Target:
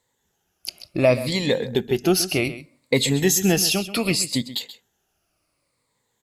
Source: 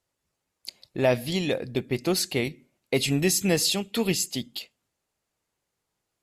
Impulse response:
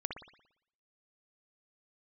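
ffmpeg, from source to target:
-filter_complex "[0:a]afftfilt=real='re*pow(10,11/40*sin(2*PI*(1*log(max(b,1)*sr/1024/100)/log(2)-(-0.66)*(pts-256)/sr)))':imag='im*pow(10,11/40*sin(2*PI*(1*log(max(b,1)*sr/1024/100)/log(2)-(-0.66)*(pts-256)/sr)))':win_size=1024:overlap=0.75,asplit=2[a][b];[b]acompressor=threshold=-30dB:ratio=6,volume=2dB[c];[a][c]amix=inputs=2:normalize=0,aecho=1:1:131:0.2"

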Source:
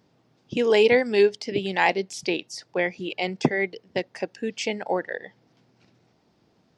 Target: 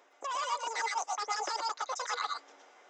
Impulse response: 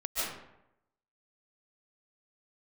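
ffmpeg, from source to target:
-filter_complex "[0:a]asetrate=103194,aresample=44100,aresample=16000,asoftclip=type=tanh:threshold=-22dB,aresample=44100,highpass=520,bandreject=f=4.4k:w=6.4,areverse,acompressor=threshold=-38dB:ratio=10,areverse[a];[1:a]atrim=start_sample=2205,atrim=end_sample=6174,asetrate=48510,aresample=44100[b];[a][b]afir=irnorm=-1:irlink=0,volume=8.5dB"

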